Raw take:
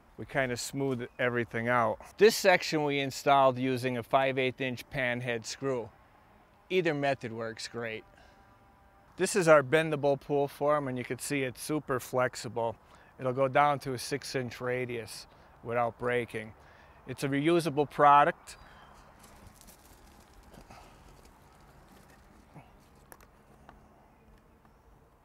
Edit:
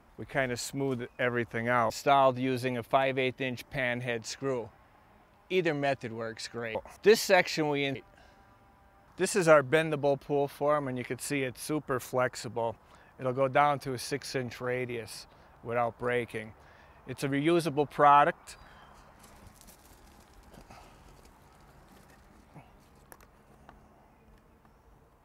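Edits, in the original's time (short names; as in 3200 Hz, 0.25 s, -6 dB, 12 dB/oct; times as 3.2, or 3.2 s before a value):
1.9–3.1 move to 7.95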